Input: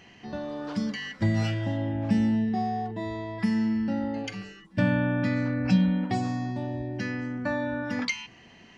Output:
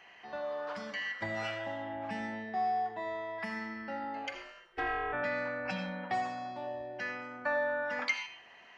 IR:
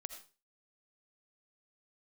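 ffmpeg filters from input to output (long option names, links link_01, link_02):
-filter_complex "[0:a]asplit=3[link_01][link_02][link_03];[link_01]afade=type=out:start_time=4.33:duration=0.02[link_04];[link_02]aeval=exprs='val(0)*sin(2*PI*170*n/s)':channel_layout=same,afade=type=in:start_time=4.33:duration=0.02,afade=type=out:start_time=5.12:duration=0.02[link_05];[link_03]afade=type=in:start_time=5.12:duration=0.02[link_06];[link_04][link_05][link_06]amix=inputs=3:normalize=0,acrossover=split=560 2600:gain=0.0708 1 0.251[link_07][link_08][link_09];[link_07][link_08][link_09]amix=inputs=3:normalize=0[link_10];[1:a]atrim=start_sample=2205[link_11];[link_10][link_11]afir=irnorm=-1:irlink=0,volume=5.5dB"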